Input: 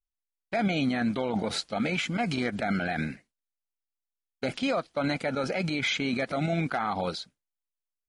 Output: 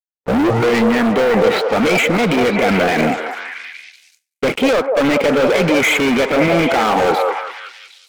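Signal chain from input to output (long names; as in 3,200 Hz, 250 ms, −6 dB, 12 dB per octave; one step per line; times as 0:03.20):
turntable start at the beginning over 0.98 s
loudspeaker in its box 290–2,500 Hz, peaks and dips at 450 Hz +7 dB, 700 Hz −8 dB, 1,100 Hz −4 dB, 1,600 Hz −9 dB
leveller curve on the samples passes 5
echo through a band-pass that steps 190 ms, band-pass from 640 Hz, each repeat 0.7 octaves, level −1 dB
noise gate with hold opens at −43 dBFS
level +6.5 dB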